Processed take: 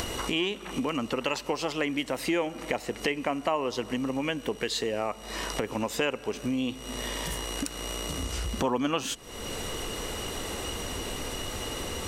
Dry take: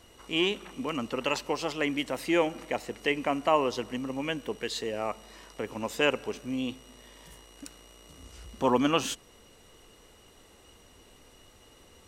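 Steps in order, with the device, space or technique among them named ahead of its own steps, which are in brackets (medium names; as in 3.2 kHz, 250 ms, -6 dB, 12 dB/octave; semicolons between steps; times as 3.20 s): upward and downward compression (upward compressor, threshold -30 dBFS; compression 3:1, threshold -37 dBFS, peak gain reduction 14.5 dB); trim +9 dB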